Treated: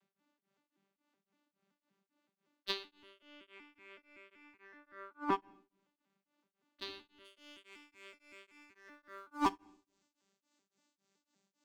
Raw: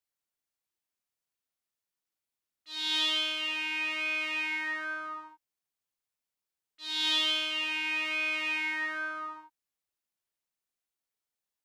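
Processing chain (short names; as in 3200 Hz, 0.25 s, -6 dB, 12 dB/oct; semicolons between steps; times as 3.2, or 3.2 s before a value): arpeggiated vocoder bare fifth, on G3, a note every 0.189 s; low shelf 170 Hz +4.5 dB; sample leveller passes 2; negative-ratio compressor -43 dBFS, ratio -0.5; tone controls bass +5 dB, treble -9 dB, from 7.24 s treble +7 dB; reverb RT60 0.65 s, pre-delay 23 ms, DRR 16 dB; beating tremolo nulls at 3.6 Hz; gain +2 dB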